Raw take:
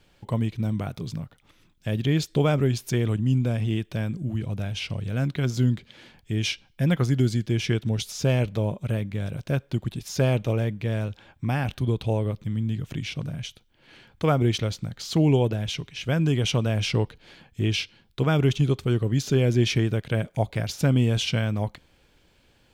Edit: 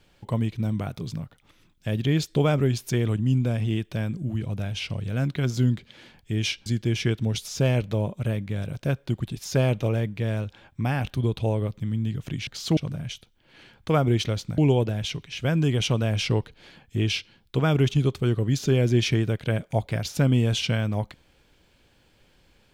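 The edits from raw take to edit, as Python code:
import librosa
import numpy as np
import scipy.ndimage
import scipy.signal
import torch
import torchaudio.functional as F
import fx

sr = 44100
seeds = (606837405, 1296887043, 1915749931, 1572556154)

y = fx.edit(x, sr, fx.cut(start_s=6.66, length_s=0.64),
    fx.move(start_s=14.92, length_s=0.3, to_s=13.11), tone=tone)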